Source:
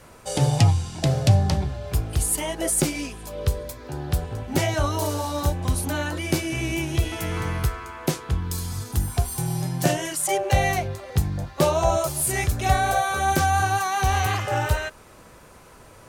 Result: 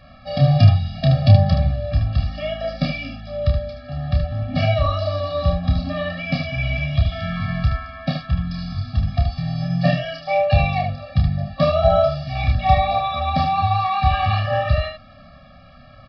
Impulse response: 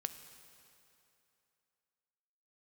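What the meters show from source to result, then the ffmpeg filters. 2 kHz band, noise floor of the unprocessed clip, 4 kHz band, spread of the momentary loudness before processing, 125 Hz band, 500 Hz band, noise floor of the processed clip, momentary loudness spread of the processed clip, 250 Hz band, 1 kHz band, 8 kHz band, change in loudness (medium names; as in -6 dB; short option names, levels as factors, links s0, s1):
-0.5 dB, -48 dBFS, +2.0 dB, 8 LU, +5.5 dB, +5.0 dB, -45 dBFS, 10 LU, +3.0 dB, +3.0 dB, under -30 dB, +3.5 dB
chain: -af "aecho=1:1:29|75:0.596|0.501,aresample=11025,aresample=44100,afftfilt=real='re*eq(mod(floor(b*sr/1024/270),2),0)':imag='im*eq(mod(floor(b*sr/1024/270),2),0)':win_size=1024:overlap=0.75,volume=1.5"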